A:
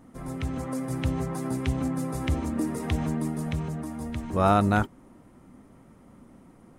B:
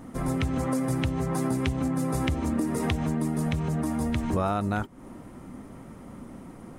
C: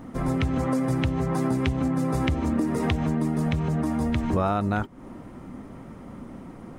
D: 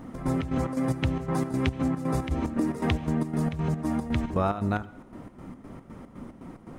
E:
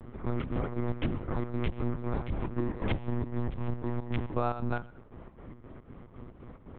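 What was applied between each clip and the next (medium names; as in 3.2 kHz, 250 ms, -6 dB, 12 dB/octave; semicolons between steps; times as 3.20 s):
compression 12:1, threshold -32 dBFS, peak gain reduction 16.5 dB; trim +9 dB
peaking EQ 11 kHz -9.5 dB 1.3 oct; trim +2.5 dB
square tremolo 3.9 Hz, depth 65%, duty 60%; reverberation RT60 0.90 s, pre-delay 69 ms, DRR 19.5 dB; trim -1 dB
monotone LPC vocoder at 8 kHz 120 Hz; trim -4 dB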